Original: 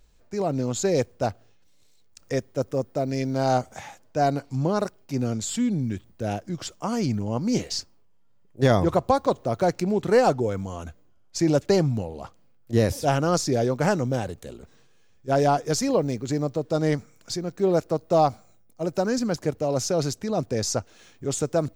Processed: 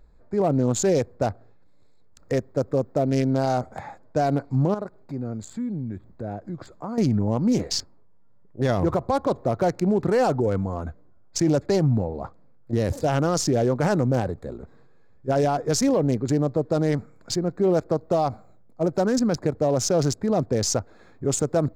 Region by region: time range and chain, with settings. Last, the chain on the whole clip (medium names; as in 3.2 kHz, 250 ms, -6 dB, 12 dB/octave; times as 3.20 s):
4.74–6.98 s: band-stop 5.3 kHz, Q 15 + compression 2:1, threshold -40 dBFS
whole clip: local Wiener filter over 15 samples; peak limiter -19 dBFS; trim +5.5 dB